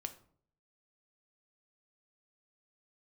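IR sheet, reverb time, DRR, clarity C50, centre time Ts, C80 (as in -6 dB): 0.55 s, 7.0 dB, 13.5 dB, 7 ms, 18.0 dB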